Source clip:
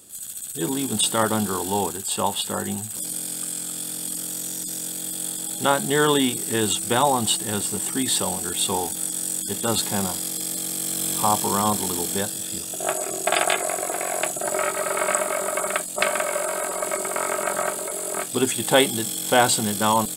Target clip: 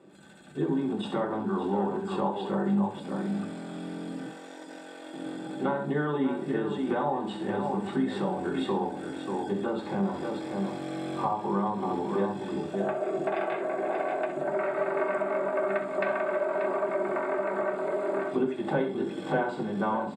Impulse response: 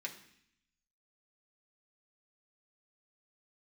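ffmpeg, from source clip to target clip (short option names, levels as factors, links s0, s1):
-filter_complex "[0:a]lowpass=1000,aecho=1:1:64|585:0.266|0.299,acompressor=threshold=0.0282:ratio=6,asettb=1/sr,asplit=3[s0][s1][s2];[s0]atrim=end=4.264[s3];[s1]atrim=start=4.26:end=5.14,asetpts=PTS-STARTPTS,afade=t=in:d=0.004:c=qsin,afade=t=out:st=0.876:d=0.004:c=qsin,highpass=470[s4];[s2]atrim=start=5.136[s5];[s3][s4]acrossfade=d=0.004:c1=hsin:c2=qsin[s6];[s6][s5]acrossfade=d=0.004:c1=qsin:c2=hsin[s7];[1:a]atrim=start_sample=2205,afade=t=out:st=0.17:d=0.01,atrim=end_sample=7938[s8];[s7][s8]afir=irnorm=-1:irlink=0,volume=2.82"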